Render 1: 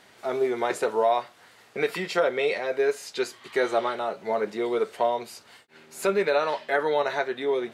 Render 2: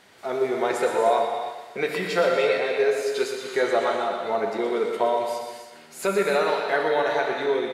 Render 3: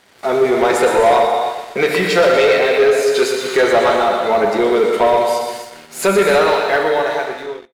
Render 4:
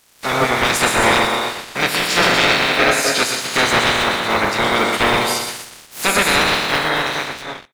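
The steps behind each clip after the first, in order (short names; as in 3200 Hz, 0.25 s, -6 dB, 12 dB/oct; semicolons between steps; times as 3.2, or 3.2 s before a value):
feedback echo 0.12 s, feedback 51%, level -9 dB; non-linear reverb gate 0.35 s flat, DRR 2.5 dB
ending faded out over 1.39 s; sample leveller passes 2; gain +4.5 dB
spectral limiter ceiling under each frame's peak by 25 dB; gain -2.5 dB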